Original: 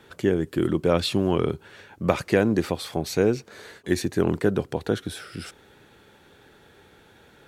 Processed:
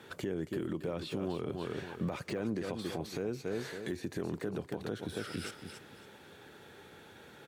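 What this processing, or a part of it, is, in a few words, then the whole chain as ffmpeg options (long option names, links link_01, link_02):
podcast mastering chain: -filter_complex "[0:a]asplit=3[link_01][link_02][link_03];[link_01]afade=type=out:start_time=2.26:duration=0.02[link_04];[link_02]lowpass=10000,afade=type=in:start_time=2.26:duration=0.02,afade=type=out:start_time=2.81:duration=0.02[link_05];[link_03]afade=type=in:start_time=2.81:duration=0.02[link_06];[link_04][link_05][link_06]amix=inputs=3:normalize=0,highpass=92,aecho=1:1:277|554|831:0.282|0.0676|0.0162,deesser=1,acompressor=threshold=-30dB:ratio=4,alimiter=level_in=1.5dB:limit=-24dB:level=0:latency=1:release=62,volume=-1.5dB" -ar 48000 -c:a libmp3lame -b:a 96k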